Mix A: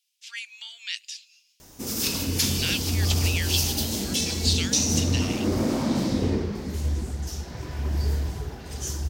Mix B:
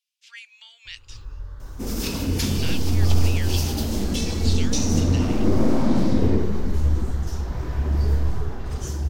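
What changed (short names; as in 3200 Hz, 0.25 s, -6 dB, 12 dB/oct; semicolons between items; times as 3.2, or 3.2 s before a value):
first sound: unmuted; second sound +4.0 dB; master: add high shelf 2400 Hz -11 dB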